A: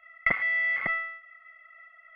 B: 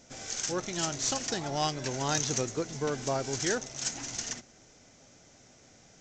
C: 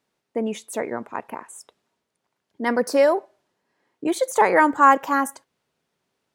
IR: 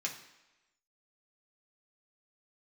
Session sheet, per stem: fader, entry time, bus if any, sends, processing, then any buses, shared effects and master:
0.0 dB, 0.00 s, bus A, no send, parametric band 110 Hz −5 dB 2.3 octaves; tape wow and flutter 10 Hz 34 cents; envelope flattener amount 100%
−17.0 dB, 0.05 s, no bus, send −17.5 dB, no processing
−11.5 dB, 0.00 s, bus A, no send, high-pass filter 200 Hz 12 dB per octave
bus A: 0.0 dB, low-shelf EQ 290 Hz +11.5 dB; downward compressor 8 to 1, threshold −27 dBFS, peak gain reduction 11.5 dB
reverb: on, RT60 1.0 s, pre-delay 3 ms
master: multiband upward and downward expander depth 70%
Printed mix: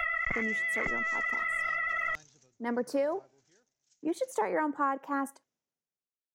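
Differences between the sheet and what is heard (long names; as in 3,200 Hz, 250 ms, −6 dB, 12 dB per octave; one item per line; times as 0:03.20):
stem A 0.0 dB → −8.5 dB
stem B −17.0 dB → −27.0 dB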